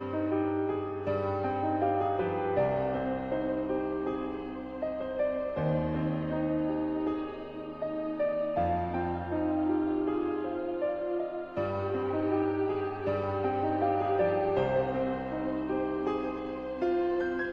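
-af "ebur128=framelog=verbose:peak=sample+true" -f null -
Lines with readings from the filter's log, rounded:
Integrated loudness:
  I:         -31.1 LUFS
  Threshold: -41.1 LUFS
Loudness range:
  LRA:         2.3 LU
  Threshold: -51.1 LUFS
  LRA low:   -32.0 LUFS
  LRA high:  -29.7 LUFS
Sample peak:
  Peak:      -15.7 dBFS
True peak:
  Peak:      -15.7 dBFS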